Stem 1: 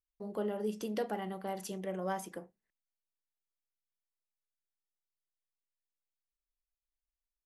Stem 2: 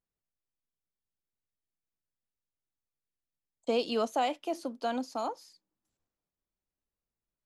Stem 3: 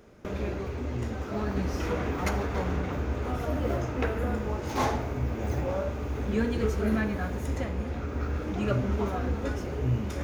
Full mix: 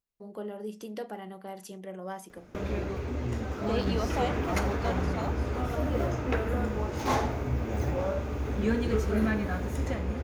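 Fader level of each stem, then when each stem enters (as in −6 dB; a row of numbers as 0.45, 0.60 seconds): −2.5, −3.5, 0.0 decibels; 0.00, 0.00, 2.30 seconds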